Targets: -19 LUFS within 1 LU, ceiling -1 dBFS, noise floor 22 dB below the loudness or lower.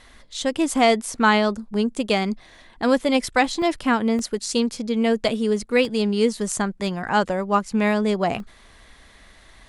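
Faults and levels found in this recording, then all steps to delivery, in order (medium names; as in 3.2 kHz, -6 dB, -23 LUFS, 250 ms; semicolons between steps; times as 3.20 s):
dropouts 4; longest dropout 1.5 ms; loudness -22.0 LUFS; peak level -5.5 dBFS; loudness target -19.0 LUFS
-> interpolate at 3.62/4.19/5.85/8.40 s, 1.5 ms; trim +3 dB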